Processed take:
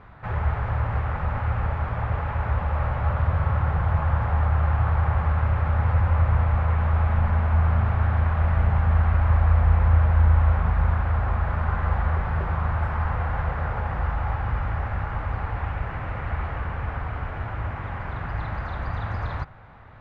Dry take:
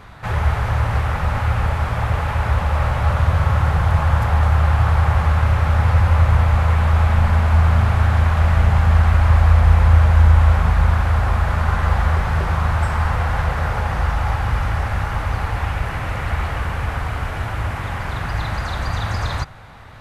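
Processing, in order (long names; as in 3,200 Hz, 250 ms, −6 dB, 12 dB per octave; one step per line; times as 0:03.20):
low-pass filter 2,000 Hz 12 dB per octave
level −6 dB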